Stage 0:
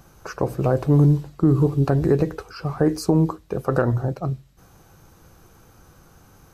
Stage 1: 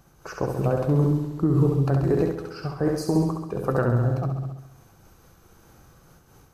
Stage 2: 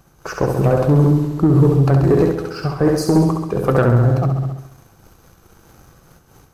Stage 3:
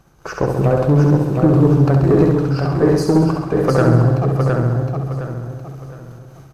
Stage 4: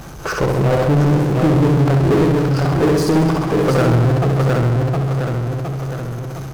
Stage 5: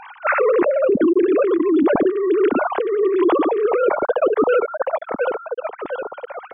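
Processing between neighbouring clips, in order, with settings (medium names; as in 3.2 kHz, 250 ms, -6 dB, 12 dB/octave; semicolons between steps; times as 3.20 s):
flutter echo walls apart 11.5 m, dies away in 0.97 s; random flutter of the level, depth 55%; trim -2 dB
waveshaping leveller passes 1; trim +5.5 dB
treble shelf 8.4 kHz -9 dB; on a send: feedback delay 713 ms, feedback 32%, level -4.5 dB
power-law waveshaper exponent 0.5; trim -5.5 dB
formants replaced by sine waves; compressor with a negative ratio -16 dBFS, ratio -1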